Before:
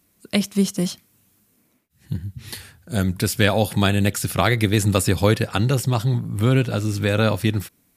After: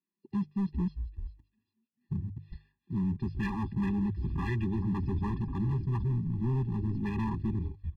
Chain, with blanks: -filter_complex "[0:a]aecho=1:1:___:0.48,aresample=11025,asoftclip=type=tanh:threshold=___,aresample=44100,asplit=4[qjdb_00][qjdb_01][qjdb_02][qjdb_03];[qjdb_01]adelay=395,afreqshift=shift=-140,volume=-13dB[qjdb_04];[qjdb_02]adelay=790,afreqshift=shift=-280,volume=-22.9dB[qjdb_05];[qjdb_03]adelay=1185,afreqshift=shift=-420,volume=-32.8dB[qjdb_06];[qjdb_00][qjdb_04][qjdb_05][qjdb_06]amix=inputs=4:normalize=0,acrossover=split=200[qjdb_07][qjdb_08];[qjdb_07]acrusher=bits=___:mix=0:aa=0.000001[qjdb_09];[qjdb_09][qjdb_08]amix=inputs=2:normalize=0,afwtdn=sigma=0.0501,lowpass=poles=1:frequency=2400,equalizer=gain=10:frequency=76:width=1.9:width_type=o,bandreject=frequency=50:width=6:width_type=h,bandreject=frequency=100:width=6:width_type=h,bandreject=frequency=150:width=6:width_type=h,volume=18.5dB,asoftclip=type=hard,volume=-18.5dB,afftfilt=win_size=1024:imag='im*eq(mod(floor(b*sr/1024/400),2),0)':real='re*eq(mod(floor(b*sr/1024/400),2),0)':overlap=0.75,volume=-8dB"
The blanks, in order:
5.1, -13.5dB, 5